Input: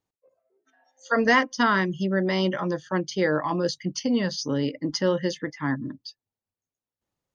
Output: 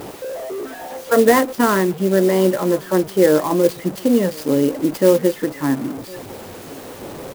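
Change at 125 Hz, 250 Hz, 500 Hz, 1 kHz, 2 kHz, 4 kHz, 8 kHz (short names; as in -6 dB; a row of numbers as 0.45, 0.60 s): +4.5 dB, +8.0 dB, +11.0 dB, +4.5 dB, 0.0 dB, 0.0 dB, n/a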